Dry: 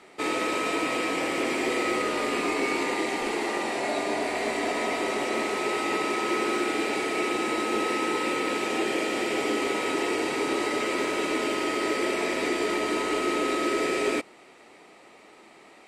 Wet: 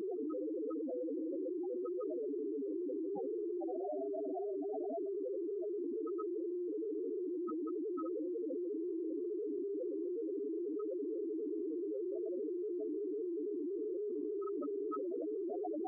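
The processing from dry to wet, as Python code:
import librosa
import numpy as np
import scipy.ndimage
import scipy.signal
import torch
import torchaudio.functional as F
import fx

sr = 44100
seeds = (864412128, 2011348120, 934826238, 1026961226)

p1 = fx.highpass(x, sr, hz=350.0, slope=6)
p2 = (np.mod(10.0 ** (30.5 / 20.0) * p1 + 1.0, 2.0) - 1.0) / 10.0 ** (30.5 / 20.0)
p3 = p1 + (p2 * 10.0 ** (-12.0 / 20.0))
p4 = np.repeat(p3[::6], 6)[:len(p3)]
p5 = np.convolve(p4, np.full(4, 1.0 / 4))[:len(p4)]
p6 = fx.peak_eq(p5, sr, hz=1900.0, db=-12.5, octaves=2.3)
p7 = fx.echo_feedback(p6, sr, ms=218, feedback_pct=29, wet_db=-19.0)
p8 = fx.rev_schroeder(p7, sr, rt60_s=3.4, comb_ms=25, drr_db=15.5)
p9 = fx.rider(p8, sr, range_db=10, speed_s=2.0)
p10 = 10.0 ** (-33.5 / 20.0) * np.tanh(p9 / 10.0 ** (-33.5 / 20.0))
p11 = fx.spec_topn(p10, sr, count=2)
p12 = fx.env_flatten(p11, sr, amount_pct=100)
y = p12 * 10.0 ** (-1.0 / 20.0)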